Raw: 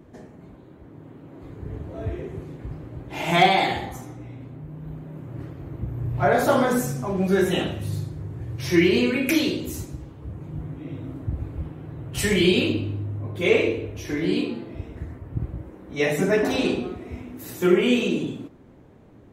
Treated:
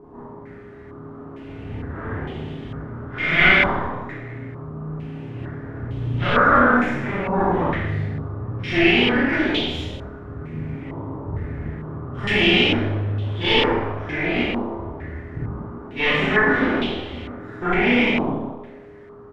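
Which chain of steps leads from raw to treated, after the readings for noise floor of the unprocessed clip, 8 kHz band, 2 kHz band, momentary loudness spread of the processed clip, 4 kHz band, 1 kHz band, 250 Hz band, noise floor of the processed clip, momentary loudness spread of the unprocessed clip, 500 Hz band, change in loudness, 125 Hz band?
−48 dBFS, below −15 dB, +9.0 dB, 19 LU, +5.5 dB, +4.0 dB, +1.0 dB, −40 dBFS, 19 LU, −0.5 dB, +3.5 dB, +2.5 dB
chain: lower of the sound and its delayed copy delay 0.57 ms
in parallel at −2.5 dB: brickwall limiter −16.5 dBFS, peak gain reduction 9.5 dB
on the sum: background noise blue −52 dBFS
on a send: echo with shifted repeats 92 ms, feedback 61%, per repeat +60 Hz, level −14 dB
on the sum: steady tone 410 Hz −37 dBFS
four-comb reverb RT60 0.7 s, combs from 26 ms, DRR −7 dB
low-pass on a step sequencer 2.2 Hz 1,000–3,200 Hz
level −9.5 dB

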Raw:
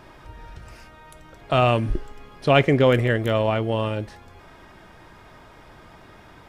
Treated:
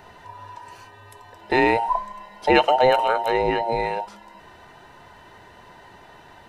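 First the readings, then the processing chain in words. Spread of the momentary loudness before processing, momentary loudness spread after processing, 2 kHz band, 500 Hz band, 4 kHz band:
13 LU, 20 LU, +2.0 dB, 0.0 dB, +0.5 dB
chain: frequency inversion band by band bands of 1,000 Hz

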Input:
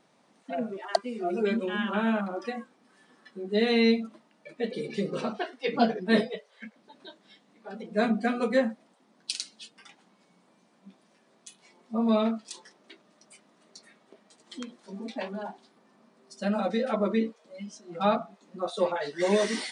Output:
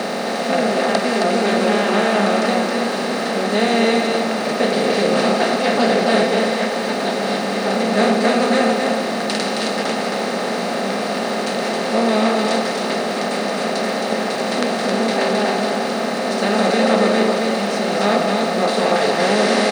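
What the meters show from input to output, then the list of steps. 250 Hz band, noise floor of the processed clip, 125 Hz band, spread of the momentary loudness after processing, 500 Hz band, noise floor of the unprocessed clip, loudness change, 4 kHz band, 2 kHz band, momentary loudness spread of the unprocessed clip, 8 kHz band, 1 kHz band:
+10.5 dB, −22 dBFS, +12.0 dB, 5 LU, +13.0 dB, −65 dBFS, +10.5 dB, +15.5 dB, +15.0 dB, 18 LU, +16.5 dB, +15.5 dB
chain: compressor on every frequency bin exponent 0.2
loudspeakers that aren't time-aligned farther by 64 metres −12 dB, 92 metres −4 dB
centre clipping without the shift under −37 dBFS

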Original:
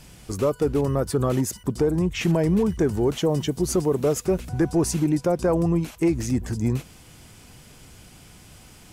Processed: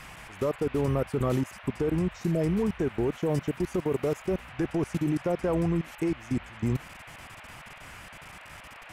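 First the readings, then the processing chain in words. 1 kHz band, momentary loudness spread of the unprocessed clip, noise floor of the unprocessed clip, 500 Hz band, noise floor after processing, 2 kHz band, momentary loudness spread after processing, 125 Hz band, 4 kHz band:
−4.5 dB, 4 LU, −49 dBFS, −6.0 dB, −47 dBFS, −2.0 dB, 17 LU, −5.5 dB, −9.0 dB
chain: time-frequency box erased 0:02.13–0:02.41, 660–3,600 Hz
output level in coarse steps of 24 dB
noise in a band 570–2,700 Hz −46 dBFS
level −1.5 dB

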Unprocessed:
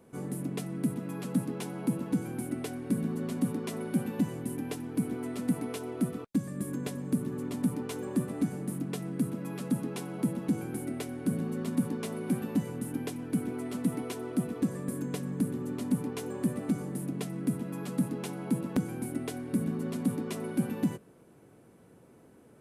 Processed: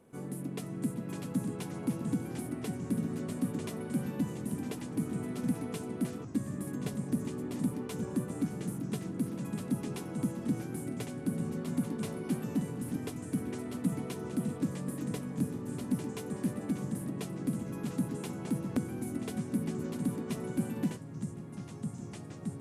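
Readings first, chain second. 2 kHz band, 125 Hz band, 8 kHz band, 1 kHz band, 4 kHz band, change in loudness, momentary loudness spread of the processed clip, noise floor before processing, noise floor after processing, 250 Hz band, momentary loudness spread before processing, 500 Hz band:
−2.5 dB, −1.0 dB, −2.0 dB, −2.5 dB, −2.5 dB, −2.5 dB, 4 LU, −57 dBFS, −43 dBFS, −2.5 dB, 5 LU, −3.0 dB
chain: delay with pitch and tempo change per echo 446 ms, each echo −3 semitones, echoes 3, each echo −6 dB
level −3.5 dB
SBC 192 kbit/s 32,000 Hz

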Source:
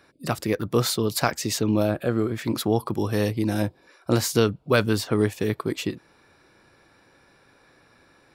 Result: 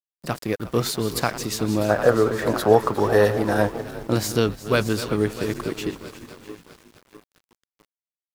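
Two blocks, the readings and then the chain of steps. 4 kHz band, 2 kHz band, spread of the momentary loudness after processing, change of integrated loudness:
−0.5 dB, +3.0 dB, 14 LU, +2.0 dB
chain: feedback delay that plays each chunk backwards 326 ms, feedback 74%, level −12.5 dB
gain on a spectral selection 0:01.90–0:03.81, 400–2,000 Hz +10 dB
dead-zone distortion −38 dBFS
on a send: echo with shifted repeats 360 ms, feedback 32%, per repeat −71 Hz, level −16 dB
on the sum: bit reduction 9 bits

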